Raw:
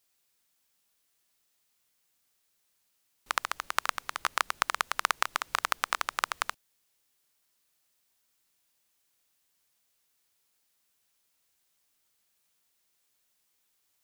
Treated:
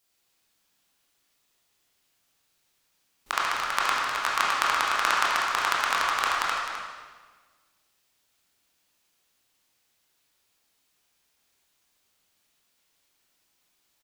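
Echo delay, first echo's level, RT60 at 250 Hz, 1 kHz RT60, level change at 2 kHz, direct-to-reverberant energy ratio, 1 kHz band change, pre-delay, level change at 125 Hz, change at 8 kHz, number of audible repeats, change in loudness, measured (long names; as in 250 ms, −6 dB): 258 ms, −9.5 dB, 1.7 s, 1.4 s, +6.5 dB, −5.5 dB, +6.5 dB, 19 ms, can't be measured, +3.0 dB, 1, +6.0 dB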